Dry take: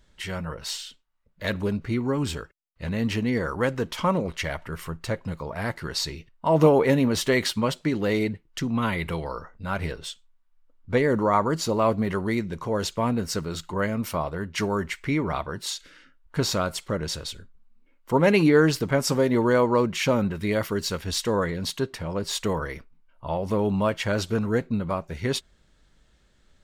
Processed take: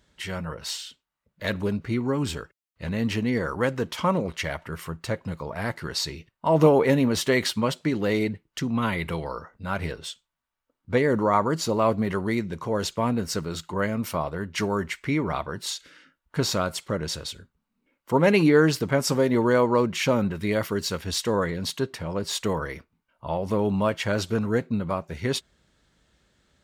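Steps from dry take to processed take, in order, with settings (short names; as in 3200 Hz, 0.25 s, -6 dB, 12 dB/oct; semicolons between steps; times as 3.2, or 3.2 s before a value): HPF 68 Hz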